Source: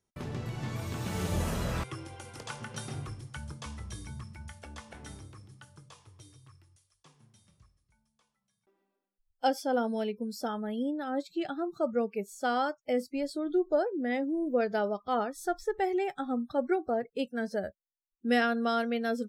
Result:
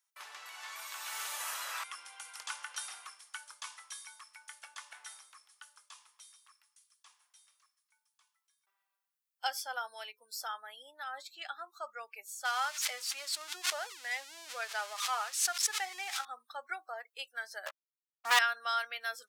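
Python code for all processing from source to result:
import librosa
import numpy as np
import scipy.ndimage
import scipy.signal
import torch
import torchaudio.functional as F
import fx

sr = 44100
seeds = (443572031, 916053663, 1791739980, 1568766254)

y = fx.chain(x, sr, fx.crossing_spikes(level_db=-28.5),
    fx.lowpass(hz=5600.0, slope=12),
    fx.pre_swell(db_per_s=100.0), at=(12.45, 16.25))
y = fx.chain(y, sr, fx.spacing_loss(db_at_10k=36),
    fx.leveller(passes=5),
    fx.band_widen(depth_pct=40), at=(17.66, 18.39))
y = scipy.signal.sosfilt(scipy.signal.butter(4, 1000.0, 'highpass', fs=sr, output='sos'), y)
y = fx.high_shelf(y, sr, hz=9700.0, db=7.5)
y = F.gain(torch.from_numpy(y), 1.0).numpy()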